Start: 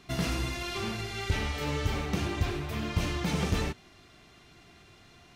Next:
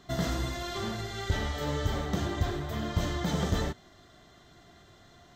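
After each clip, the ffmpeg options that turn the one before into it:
-af "superequalizer=8b=1.58:12b=0.282:14b=0.708:16b=0.316"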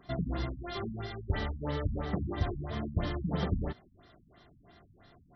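-af "afftfilt=real='re*lt(b*sr/1024,250*pow(6000/250,0.5+0.5*sin(2*PI*3*pts/sr)))':imag='im*lt(b*sr/1024,250*pow(6000/250,0.5+0.5*sin(2*PI*3*pts/sr)))':win_size=1024:overlap=0.75,volume=-2dB"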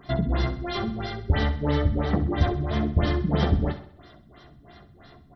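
-filter_complex "[0:a]asplit=2[a][b];[b]adelay=14,volume=-8dB[c];[a][c]amix=inputs=2:normalize=0,aecho=1:1:65|130|195|260|325:0.237|0.116|0.0569|0.0279|0.0137,volume=8.5dB"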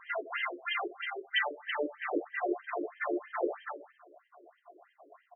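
-af "crystalizer=i=5.5:c=0,afftfilt=real='re*between(b*sr/1024,410*pow(2300/410,0.5+0.5*sin(2*PI*3.1*pts/sr))/1.41,410*pow(2300/410,0.5+0.5*sin(2*PI*3.1*pts/sr))*1.41)':imag='im*between(b*sr/1024,410*pow(2300/410,0.5+0.5*sin(2*PI*3.1*pts/sr))/1.41,410*pow(2300/410,0.5+0.5*sin(2*PI*3.1*pts/sr))*1.41)':win_size=1024:overlap=0.75"

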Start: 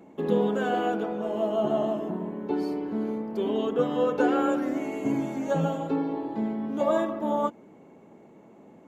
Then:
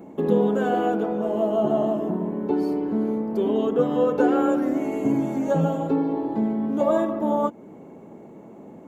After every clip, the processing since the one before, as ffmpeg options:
-filter_complex "[0:a]equalizer=f=3.3k:w=0.39:g=-7.5,asplit=2[a][b];[b]acompressor=threshold=-35dB:ratio=6,volume=0dB[c];[a][c]amix=inputs=2:normalize=0,volume=3dB"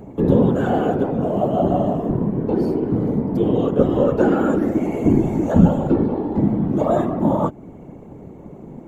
-af "equalizer=f=120:w=1:g=13.5,afftfilt=real='hypot(re,im)*cos(2*PI*random(0))':imag='hypot(re,im)*sin(2*PI*random(1))':win_size=512:overlap=0.75,volume=7dB"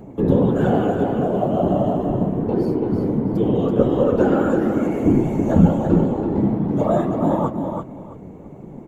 -af "aecho=1:1:332|664|996:0.501|0.105|0.0221,flanger=delay=5.2:depth=7.1:regen=-61:speed=1.5:shape=triangular,volume=3dB"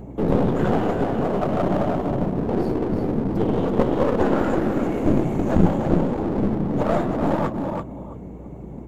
-af "aeval=exprs='val(0)+0.01*(sin(2*PI*60*n/s)+sin(2*PI*2*60*n/s)/2+sin(2*PI*3*60*n/s)/3+sin(2*PI*4*60*n/s)/4+sin(2*PI*5*60*n/s)/5)':c=same,aeval=exprs='clip(val(0),-1,0.0531)':c=same"

